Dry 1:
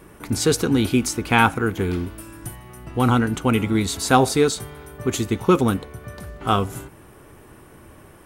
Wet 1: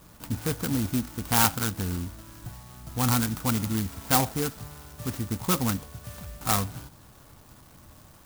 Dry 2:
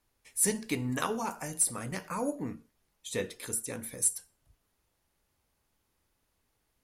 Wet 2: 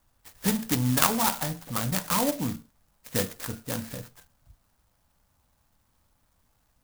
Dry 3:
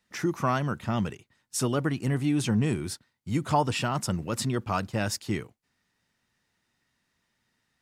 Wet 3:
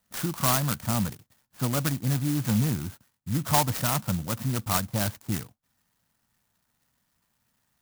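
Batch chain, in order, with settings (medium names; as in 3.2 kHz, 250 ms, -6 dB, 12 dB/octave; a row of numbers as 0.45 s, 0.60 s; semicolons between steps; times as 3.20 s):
peaking EQ 390 Hz -13.5 dB 0.67 oct; in parallel at -5 dB: saturation -20.5 dBFS; on the sum: four-pole ladder low-pass 2.4 kHz, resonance 30%; sampling jitter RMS 0.14 ms; normalise loudness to -27 LUFS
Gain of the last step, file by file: -0.5 dB, +13.5 dB, +6.0 dB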